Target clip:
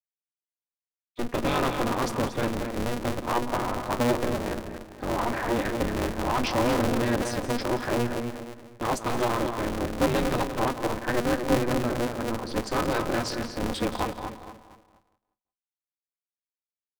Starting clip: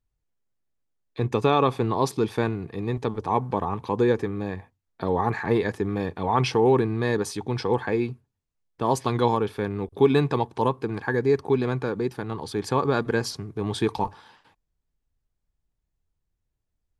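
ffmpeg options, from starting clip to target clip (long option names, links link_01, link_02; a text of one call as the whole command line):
ffmpeg -i in.wav -filter_complex "[0:a]afftfilt=real='re*gte(hypot(re,im),0.0158)':imag='im*gte(hypot(re,im),0.0158)':win_size=1024:overlap=0.75,acontrast=58,asplit=2[link_01][link_02];[link_02]aecho=0:1:174|348|522:0.211|0.0613|0.0178[link_03];[link_01][link_03]amix=inputs=2:normalize=0,asoftclip=type=tanh:threshold=-11dB,flanger=delay=7.6:depth=3.1:regen=73:speed=0.26:shape=triangular,asplit=2[link_04][link_05];[link_05]adelay=234,lowpass=frequency=3900:poles=1,volume=-6.5dB,asplit=2[link_06][link_07];[link_07]adelay=234,lowpass=frequency=3900:poles=1,volume=0.36,asplit=2[link_08][link_09];[link_09]adelay=234,lowpass=frequency=3900:poles=1,volume=0.36,asplit=2[link_10][link_11];[link_11]adelay=234,lowpass=frequency=3900:poles=1,volume=0.36[link_12];[link_06][link_08][link_10][link_12]amix=inputs=4:normalize=0[link_13];[link_04][link_13]amix=inputs=2:normalize=0,aeval=exprs='val(0)*sgn(sin(2*PI*120*n/s))':channel_layout=same,volume=-3dB" out.wav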